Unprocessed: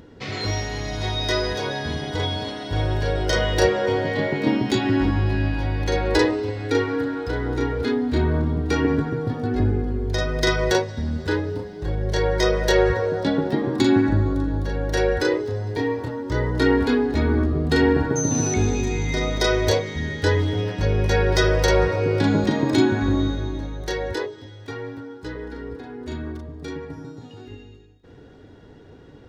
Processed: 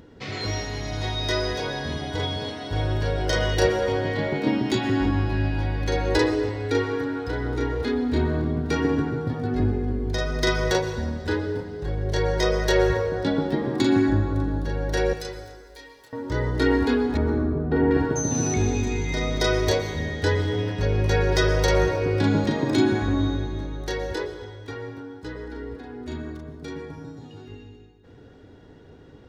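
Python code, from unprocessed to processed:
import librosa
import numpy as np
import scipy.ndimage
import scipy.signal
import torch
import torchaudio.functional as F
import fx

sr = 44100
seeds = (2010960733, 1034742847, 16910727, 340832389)

y = fx.differentiator(x, sr, at=(15.13, 16.13))
y = fx.lowpass(y, sr, hz=1200.0, slope=12, at=(17.17, 17.91))
y = fx.rev_plate(y, sr, seeds[0], rt60_s=1.6, hf_ratio=0.55, predelay_ms=105, drr_db=9.5)
y = y * 10.0 ** (-2.5 / 20.0)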